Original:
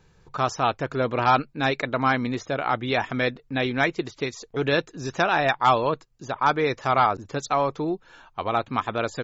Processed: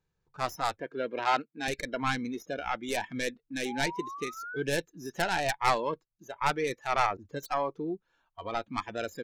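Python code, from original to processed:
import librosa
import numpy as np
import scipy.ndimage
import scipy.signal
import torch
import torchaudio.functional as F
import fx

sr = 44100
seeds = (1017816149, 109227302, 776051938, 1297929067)

y = fx.tracing_dist(x, sr, depth_ms=0.24)
y = fx.spec_paint(y, sr, seeds[0], shape='rise', start_s=3.65, length_s=0.98, low_hz=780.0, high_hz=1600.0, level_db=-33.0)
y = fx.noise_reduce_blind(y, sr, reduce_db=16)
y = fx.bandpass_edges(y, sr, low_hz=260.0, high_hz=4600.0, at=(0.8, 1.68))
y = y * 10.0 ** (-7.0 / 20.0)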